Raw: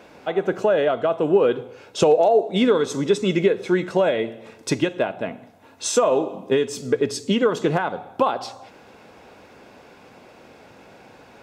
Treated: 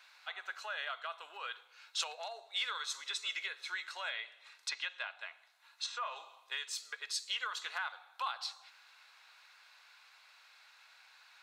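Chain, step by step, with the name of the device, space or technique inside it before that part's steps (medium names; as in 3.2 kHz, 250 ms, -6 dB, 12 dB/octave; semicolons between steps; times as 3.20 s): headphones lying on a table (high-pass 1.2 kHz 24 dB/octave; peaking EQ 4.1 kHz +11 dB 0.24 oct); 4.07–6.16 s: low-pass that closes with the level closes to 2.1 kHz, closed at -22 dBFS; trim -8 dB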